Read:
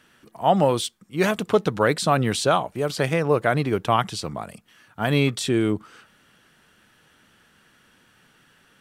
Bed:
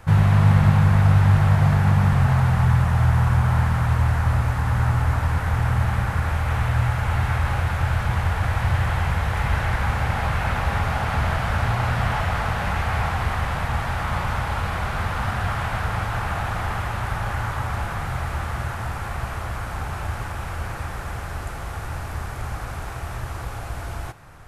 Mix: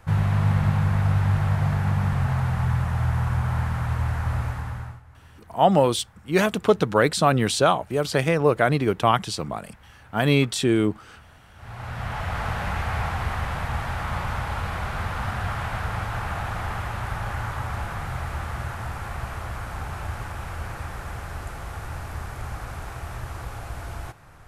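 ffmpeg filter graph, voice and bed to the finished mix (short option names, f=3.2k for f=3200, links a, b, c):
-filter_complex "[0:a]adelay=5150,volume=1dB[a];[1:a]volume=20dB,afade=t=out:st=4.44:d=0.57:silence=0.0668344,afade=t=in:st=11.55:d=0.93:silence=0.0530884[b];[a][b]amix=inputs=2:normalize=0"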